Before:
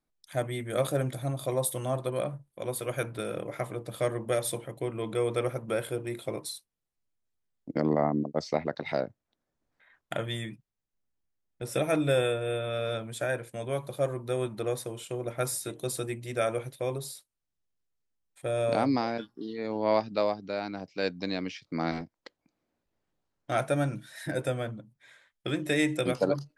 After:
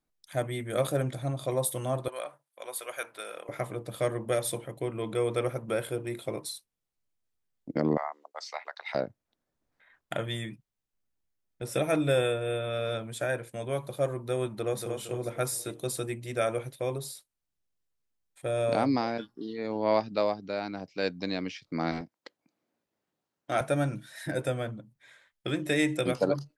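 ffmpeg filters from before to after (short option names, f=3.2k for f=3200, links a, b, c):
-filter_complex "[0:a]asettb=1/sr,asplit=3[a][b][c];[a]atrim=end=1.024[d];[b]atrim=start=1.02:end=1.51,asetpts=PTS-STARTPTS,afade=t=in:d=0.004:c=qsin,afade=t=out:st=0.486:d=0.004:c=qsin,lowpass=8.4k[e];[c]atrim=start=1.506[f];[d][e]acrossfade=d=0.004:c1=hsin:c2=qsin[g];[g][f]acrossfade=d=0.004:c1=qsin:c2=hsin,asettb=1/sr,asplit=3[h][i][j];[h]atrim=end=2.084[k];[i]atrim=start=2.08:end=3.49,asetpts=PTS-STARTPTS,afade=t=in:d=0.004:c=qsin,afade=t=out:st=1.406:d=0.004:c=qsin,highpass=770[l];[j]atrim=start=3.486[m];[k][l]acrossfade=d=0.004:c1=hsin:c2=qsin[n];[n][m]acrossfade=d=0.004:c1=qsin:c2=hsin,asettb=1/sr,asplit=3[o][p][q];[o]atrim=end=7.974[r];[p]atrim=start=7.97:end=8.95,asetpts=PTS-STARTPTS,afade=t=in:d=0.004:c=qsin,afade=t=out:st=0.976:d=0.004:c=qsin,highpass=f=870:w=0.5412,highpass=f=870:w=1.3066[s];[q]atrim=start=8.946[t];[r][s]acrossfade=d=0.004:c1=hsin:c2=qsin[u];[u][t]acrossfade=d=0.004:c1=qsin:c2=hsin,asplit=2[v][w];[w]afade=t=in:st=14.49:d=0.01,afade=t=out:st=14.94:d=0.01,aecho=0:1:230|460|690|920|1150:0.530884|0.238898|0.107504|0.0483768|0.0217696[x];[v][x]amix=inputs=2:normalize=0,asettb=1/sr,asplit=3[y][z][aa];[y]atrim=end=22.014[ab];[z]atrim=start=22.01:end=23.61,asetpts=PTS-STARTPTS,afade=t=in:d=0.004:c=qsin,afade=t=out:st=1.596:d=0.004:c=qsin,highpass=150[ac];[aa]atrim=start=23.606[ad];[ab][ac]acrossfade=d=0.004:c1=hsin:c2=qsin[ae];[ae][ad]acrossfade=d=0.004:c1=qsin:c2=hsin"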